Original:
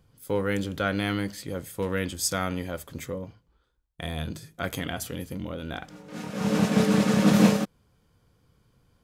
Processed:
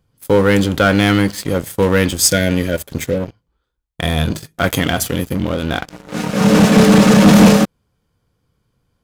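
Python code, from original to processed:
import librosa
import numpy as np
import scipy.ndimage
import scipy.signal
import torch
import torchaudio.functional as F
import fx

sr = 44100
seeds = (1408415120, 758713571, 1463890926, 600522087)

y = fx.spec_repair(x, sr, seeds[0], start_s=2.29, length_s=0.89, low_hz=680.0, high_hz=1400.0, source='before')
y = fx.leveller(y, sr, passes=3)
y = y * 10.0 ** (4.0 / 20.0)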